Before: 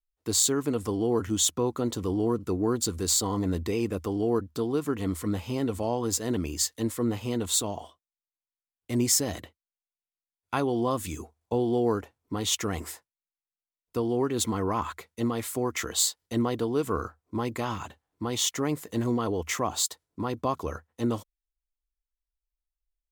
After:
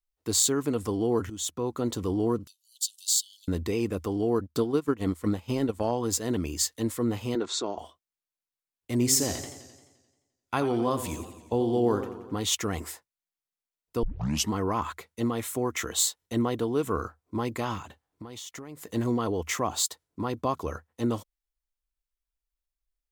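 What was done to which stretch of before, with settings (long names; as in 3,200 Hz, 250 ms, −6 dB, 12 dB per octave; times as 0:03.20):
0:01.30–0:01.87: fade in, from −14 dB
0:02.47–0:03.48: Butterworth high-pass 2,900 Hz 96 dB per octave
0:04.43–0:05.91: transient designer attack +5 dB, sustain −12 dB
0:07.35–0:07.78: loudspeaker in its box 270–5,900 Hz, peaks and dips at 370 Hz +8 dB, 1,400 Hz +6 dB, 3,000 Hz −8 dB
0:08.92–0:12.37: feedback echo with a swinging delay time 87 ms, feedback 62%, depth 124 cents, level −11 dB
0:14.03: tape start 0.48 s
0:15.29–0:16.99: notch filter 4,700 Hz, Q 8.5
0:17.79–0:18.84: downward compressor 16 to 1, threshold −37 dBFS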